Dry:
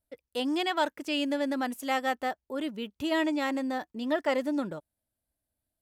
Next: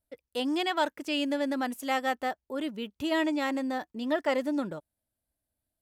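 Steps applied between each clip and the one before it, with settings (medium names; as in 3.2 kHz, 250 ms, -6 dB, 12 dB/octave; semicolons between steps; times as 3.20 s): no audible change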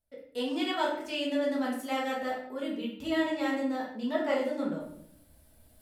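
reverse; upward compressor, threshold -39 dBFS; reverse; simulated room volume 130 m³, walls mixed, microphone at 1.5 m; trim -8 dB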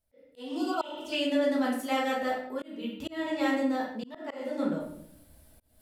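slow attack 340 ms; spectral replace 0.48–1.10 s, 1.5–4.1 kHz before; trim +3 dB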